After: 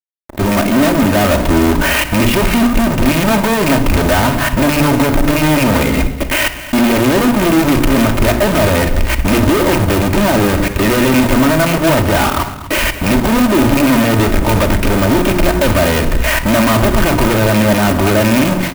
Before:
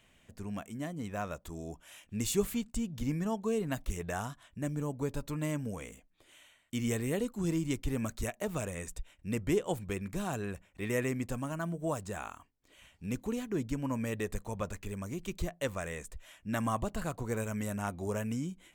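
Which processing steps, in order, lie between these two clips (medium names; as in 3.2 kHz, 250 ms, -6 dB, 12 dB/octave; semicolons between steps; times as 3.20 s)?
rattle on loud lows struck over -36 dBFS, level -31 dBFS; gate with hold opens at -53 dBFS; steep low-pass 2.9 kHz 48 dB/octave; treble shelf 2 kHz -5 dB; hum notches 60/120/180/240/300/360 Hz; level held to a coarse grid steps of 22 dB; peak limiter -41 dBFS, peak gain reduction 11 dB; level rider gain up to 16 dB; fuzz box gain 57 dB, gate -56 dBFS; delay 242 ms -14.5 dB; reverberation RT60 0.75 s, pre-delay 3 ms, DRR 5 dB; sampling jitter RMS 0.034 ms; trim +1.5 dB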